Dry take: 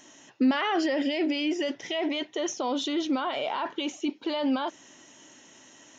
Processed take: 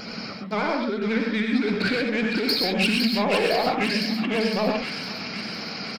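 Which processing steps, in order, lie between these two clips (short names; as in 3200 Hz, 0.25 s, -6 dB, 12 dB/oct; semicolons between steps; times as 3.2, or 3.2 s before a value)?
HPF 200 Hz 6 dB/oct; low shelf 450 Hz +7.5 dB; negative-ratio compressor -33 dBFS, ratio -1; vibrato 12 Hz 82 cents; pitch shift -5 st; soft clip -26 dBFS, distortion -15 dB; thin delay 0.509 s, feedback 63%, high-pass 1700 Hz, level -4.5 dB; non-linear reverb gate 0.15 s rising, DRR 1.5 dB; gain +8.5 dB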